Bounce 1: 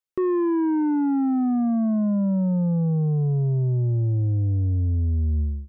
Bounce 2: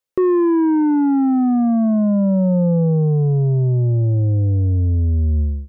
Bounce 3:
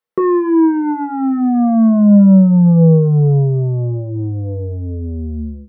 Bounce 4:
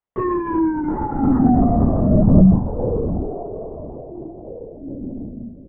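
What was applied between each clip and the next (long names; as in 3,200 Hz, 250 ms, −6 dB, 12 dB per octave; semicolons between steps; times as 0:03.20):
parametric band 520 Hz +8 dB 0.49 octaves; level +5.5 dB
convolution reverb RT60 0.15 s, pre-delay 3 ms, DRR 4 dB; level −5.5 dB
Chebyshev high-pass with heavy ripple 180 Hz, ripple 9 dB; repeating echo 707 ms, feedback 17%, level −12.5 dB; linear-prediction vocoder at 8 kHz whisper; level +1 dB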